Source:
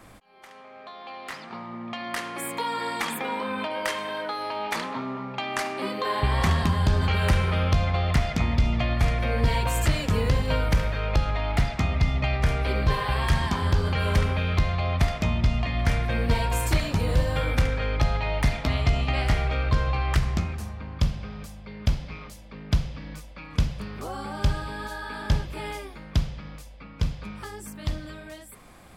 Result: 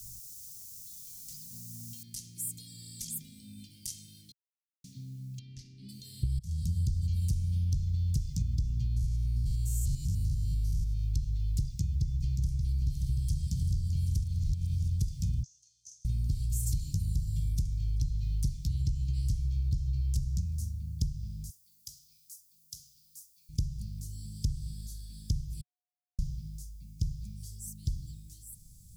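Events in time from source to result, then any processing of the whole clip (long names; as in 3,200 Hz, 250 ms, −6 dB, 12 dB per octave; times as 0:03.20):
0:02.03: noise floor change −47 dB −69 dB
0:04.32–0:04.84: silence
0:05.39–0:05.89: high-frequency loss of the air 250 metres
0:06.39–0:06.85: fade in
0:08.87–0:11.04: spectrum averaged block by block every 100 ms
0:11.62–0:12.63: delay throw 580 ms, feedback 70%, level −6 dB
0:13.16–0:13.66: delay throw 390 ms, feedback 85%, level −10 dB
0:14.24–0:14.88: reverse
0:15.43–0:16.05: resonant band-pass 6,300 Hz, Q 9.1
0:21.50–0:23.49: first difference
0:25.61–0:26.19: beep over 721 Hz −7 dBFS
whole clip: elliptic band-stop filter 140–5,800 Hz, stop band 80 dB; downward compressor 6 to 1, threshold −28 dBFS; level +1.5 dB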